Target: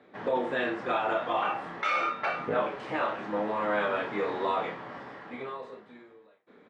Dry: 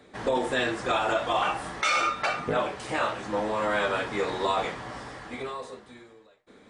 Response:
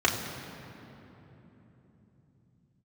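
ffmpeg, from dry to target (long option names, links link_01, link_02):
-filter_complex "[0:a]asettb=1/sr,asplit=3[link_01][link_02][link_03];[link_01]atrim=end=2.244[link_04];[link_02]atrim=start=2.24:end=4.56,asetpts=PTS-STARTPTS,afade=type=in:duration=0.004:curve=qsin,afade=type=out:start_time=2.316:duration=0.004:curve=qsin,aeval=exprs='val(0)+0.5*0.00794*sgn(val(0))':channel_layout=same[link_05];[link_03]atrim=start=4.556[link_06];[link_04][link_05]acrossfade=duration=0.004:curve1=hsin:curve2=qsin[link_07];[link_07][link_06]acrossfade=duration=0.004:curve1=qsin:curve2=hsin,highpass=150,lowpass=2500,asplit=2[link_08][link_09];[link_09]adelay=29,volume=-7dB[link_10];[link_08][link_10]amix=inputs=2:normalize=0,volume=-3dB"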